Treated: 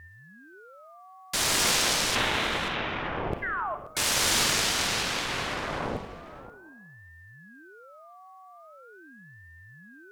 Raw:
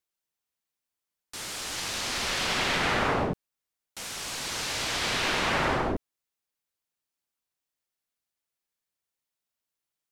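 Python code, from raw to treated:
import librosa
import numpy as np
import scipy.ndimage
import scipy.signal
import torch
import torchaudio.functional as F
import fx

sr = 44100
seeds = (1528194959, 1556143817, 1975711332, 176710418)

p1 = fx.steep_lowpass(x, sr, hz=3200.0, slope=72, at=(2.15, 3.32))
p2 = fx.over_compress(p1, sr, threshold_db=-35.0, ratio=-1.0)
p3 = p2 + 10.0 ** (-52.0 / 20.0) * np.sin(2.0 * np.pi * 940.0 * np.arange(len(p2)) / sr)
p4 = fx.cheby_harmonics(p3, sr, harmonics=(6,), levels_db=(-20,), full_scale_db=-15.5)
p5 = fx.spec_paint(p4, sr, seeds[0], shape='fall', start_s=3.42, length_s=0.33, low_hz=790.0, high_hz=1900.0, level_db=-37.0)
p6 = p5 + fx.echo_single(p5, sr, ms=531, db=-16.0, dry=0)
p7 = fx.rev_freeverb(p6, sr, rt60_s=0.75, hf_ratio=0.25, predelay_ms=10, drr_db=9.0)
p8 = fx.ring_lfo(p7, sr, carrier_hz=520.0, swing_pct=65, hz=0.42)
y = F.gain(torch.from_numpy(p8), 9.0).numpy()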